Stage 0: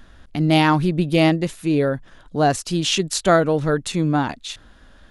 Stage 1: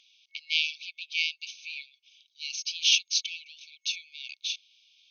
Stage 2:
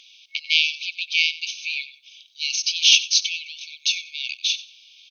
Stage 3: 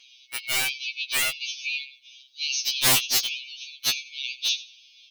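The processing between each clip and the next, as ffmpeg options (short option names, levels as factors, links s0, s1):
-af "acontrast=59,afftfilt=real='re*between(b*sr/4096,2200,6500)':imag='im*between(b*sr/4096,2200,6500)':win_size=4096:overlap=0.75,volume=0.531"
-filter_complex "[0:a]asplit=2[s0][s1];[s1]acompressor=threshold=0.02:ratio=6,volume=1[s2];[s0][s2]amix=inputs=2:normalize=0,aecho=1:1:93|186:0.15|0.0329,volume=2"
-af "aeval=exprs='(mod(3.35*val(0)+1,2)-1)/3.35':c=same,afftfilt=real='re*2.45*eq(mod(b,6),0)':imag='im*2.45*eq(mod(b,6),0)':win_size=2048:overlap=0.75"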